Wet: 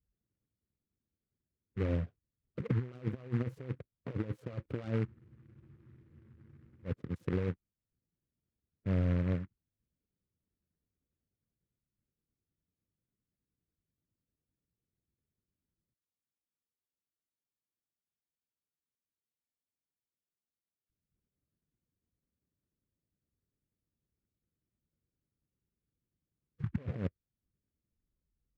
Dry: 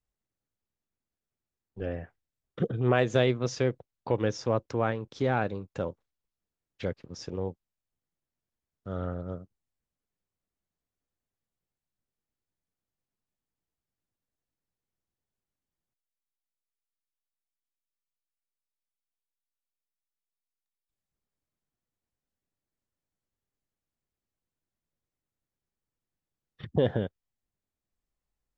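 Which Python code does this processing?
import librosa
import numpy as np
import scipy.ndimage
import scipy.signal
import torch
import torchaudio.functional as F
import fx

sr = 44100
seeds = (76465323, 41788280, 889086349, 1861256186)

y = fx.self_delay(x, sr, depth_ms=0.83)
y = fx.over_compress(y, sr, threshold_db=-33.0, ratio=-0.5)
y = fx.highpass(y, sr, hz=83.0, slope=6)
y = fx.spec_gate(y, sr, threshold_db=-15, keep='strong')
y = scipy.signal.lfilter(np.full(50, 1.0 / 50), 1.0, y)
y = fx.low_shelf(y, sr, hz=190.0, db=7.0)
y = fx.spec_freeze(y, sr, seeds[0], at_s=5.08, hold_s=1.77)
y = fx.noise_mod_delay(y, sr, seeds[1], noise_hz=1400.0, depth_ms=0.077)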